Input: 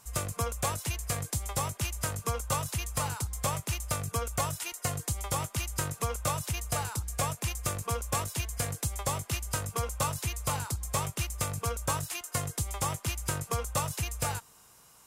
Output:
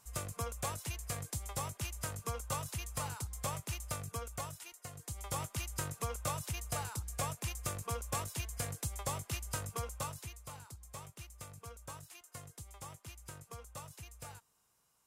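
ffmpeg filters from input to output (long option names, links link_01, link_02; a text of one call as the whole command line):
ffmpeg -i in.wav -af "volume=3dB,afade=type=out:start_time=3.85:duration=1.07:silence=0.334965,afade=type=in:start_time=4.92:duration=0.46:silence=0.298538,afade=type=out:start_time=9.68:duration=0.76:silence=0.281838" out.wav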